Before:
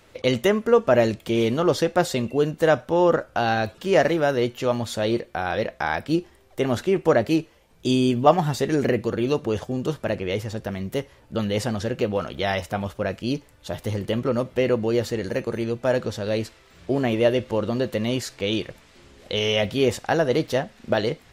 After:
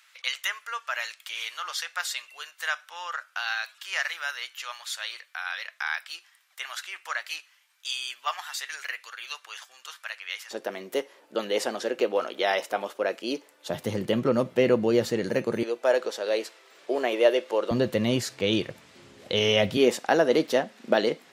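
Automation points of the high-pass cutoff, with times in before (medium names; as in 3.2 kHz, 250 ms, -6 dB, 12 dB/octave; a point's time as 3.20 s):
high-pass 24 dB/octave
1.3 kHz
from 10.51 s 320 Hz
from 13.70 s 130 Hz
from 15.63 s 380 Hz
from 17.71 s 100 Hz
from 19.77 s 210 Hz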